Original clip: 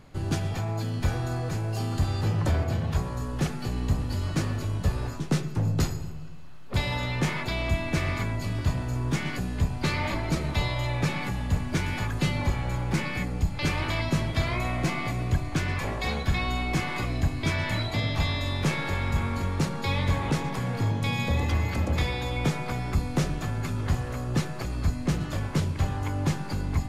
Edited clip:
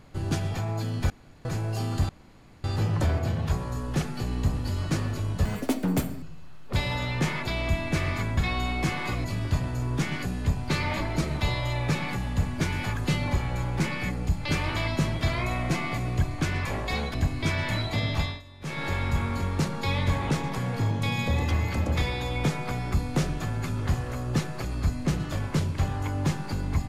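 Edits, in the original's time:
1.1–1.45 room tone
2.09 insert room tone 0.55 s
4.9–6.23 speed 172%
16.28–17.15 move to 8.38
18.18–18.86 dip -19.5 dB, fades 0.25 s

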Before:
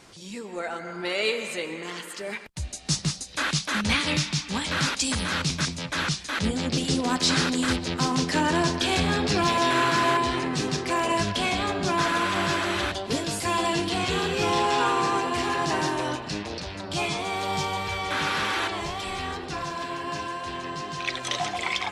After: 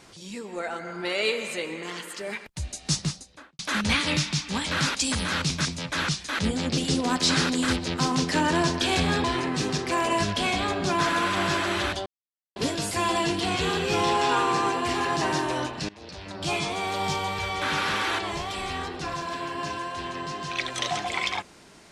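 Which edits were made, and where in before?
2.93–3.59 studio fade out
9.24–10.23 cut
13.05 insert silence 0.50 s
16.38–16.95 fade in, from -20 dB

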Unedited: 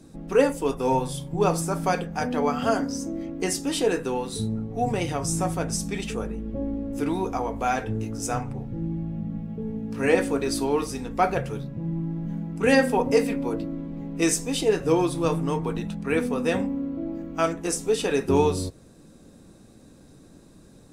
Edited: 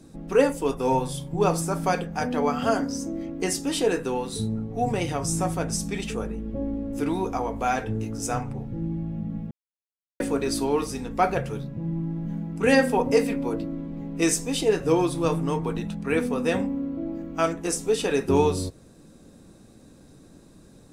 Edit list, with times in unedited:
9.51–10.2 mute

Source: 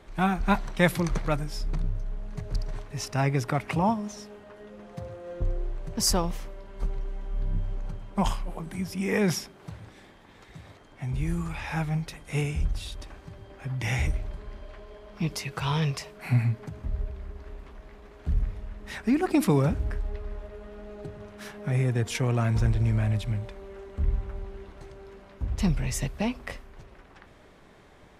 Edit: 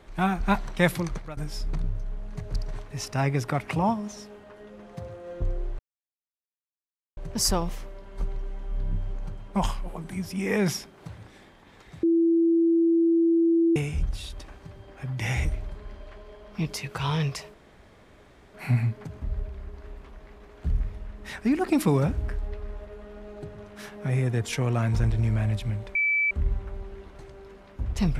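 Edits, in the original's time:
0.9–1.37 fade out linear, to -17.5 dB
5.79 insert silence 1.38 s
10.65–12.38 bleep 333 Hz -17.5 dBFS
16.16 insert room tone 1.00 s
23.57–23.93 bleep 2310 Hz -20.5 dBFS

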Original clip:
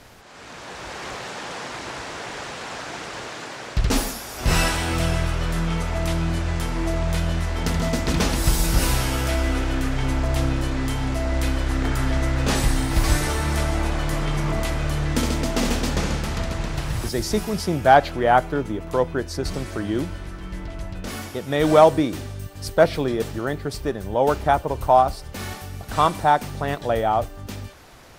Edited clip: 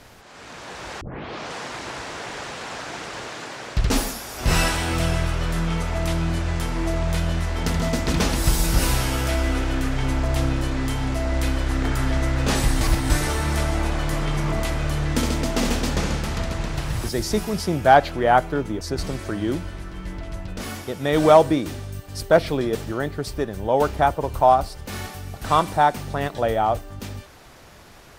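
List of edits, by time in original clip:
1.01 tape start 0.53 s
12.81–13.1 reverse
18.81–19.28 cut

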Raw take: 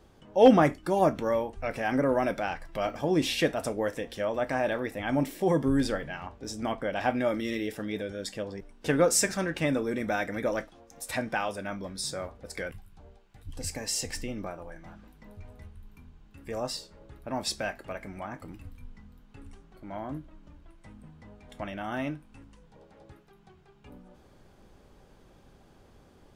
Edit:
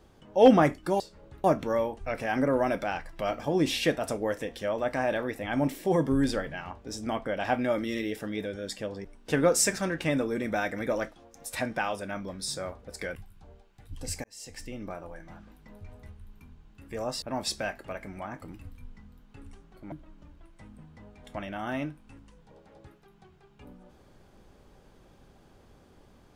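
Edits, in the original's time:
13.8–14.58 fade in
16.78–17.22 move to 1
19.92–20.17 cut

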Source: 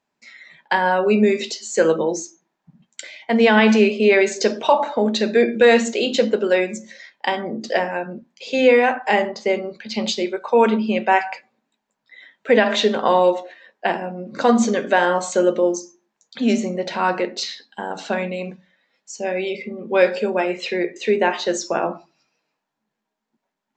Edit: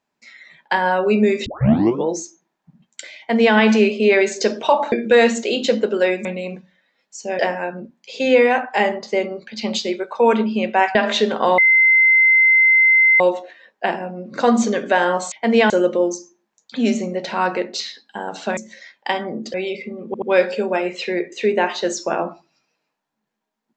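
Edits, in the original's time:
1.46 tape start 0.59 s
3.18–3.56 copy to 15.33
4.92–5.42 cut
6.75–7.72 swap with 18.2–19.34
11.28–12.58 cut
13.21 add tone 2070 Hz -9.5 dBFS 1.62 s
19.86 stutter 0.08 s, 3 plays

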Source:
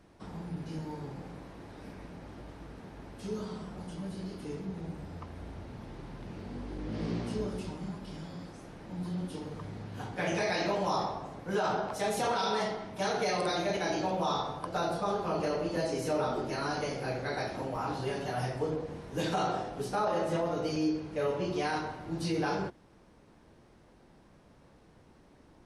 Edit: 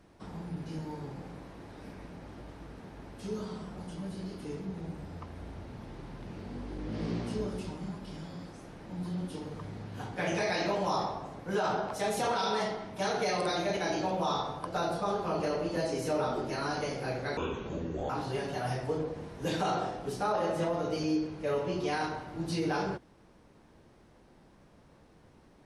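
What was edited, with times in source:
17.37–17.82 speed 62%

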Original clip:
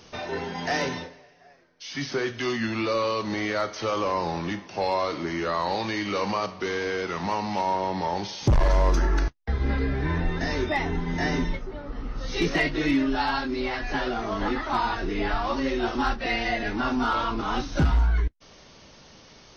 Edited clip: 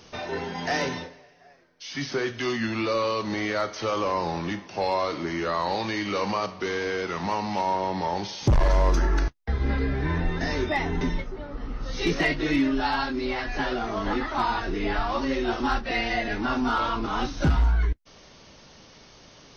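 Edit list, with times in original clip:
11.01–11.36 cut

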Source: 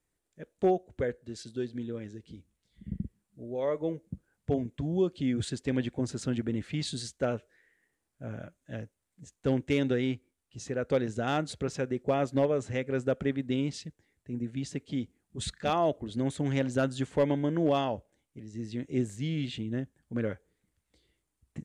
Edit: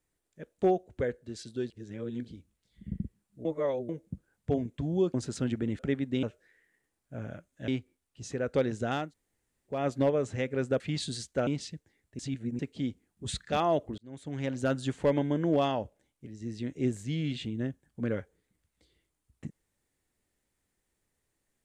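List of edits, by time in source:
1.7–2.28 reverse
3.45–3.89 reverse
5.14–6 cut
6.65–7.32 swap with 13.16–13.6
8.77–10.04 cut
11.38–12.12 room tone, crossfade 0.24 s
14.32–14.72 reverse
16.11–16.9 fade in linear

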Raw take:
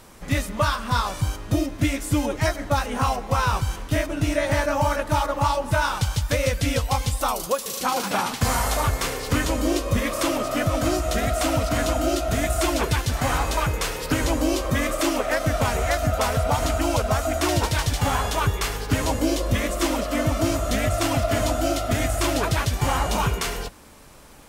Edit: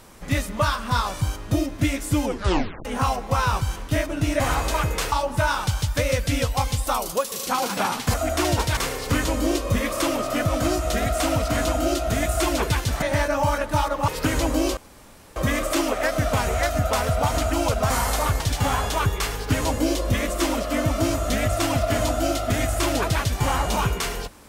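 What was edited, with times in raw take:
2.25 tape stop 0.60 s
4.4–5.46 swap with 13.23–13.95
8.48–8.98 swap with 17.18–17.81
14.64 insert room tone 0.59 s

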